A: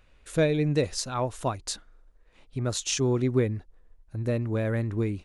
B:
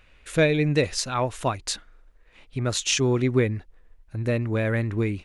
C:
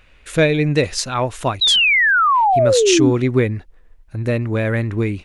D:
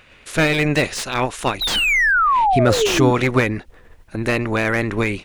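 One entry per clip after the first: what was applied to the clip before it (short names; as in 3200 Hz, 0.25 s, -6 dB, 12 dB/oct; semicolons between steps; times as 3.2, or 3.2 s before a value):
bell 2300 Hz +7 dB 1.4 oct; gain +2.5 dB
painted sound fall, 1.61–3.11, 260–4000 Hz -19 dBFS; gain +5 dB
spectral limiter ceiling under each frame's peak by 17 dB; slew limiter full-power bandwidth 380 Hz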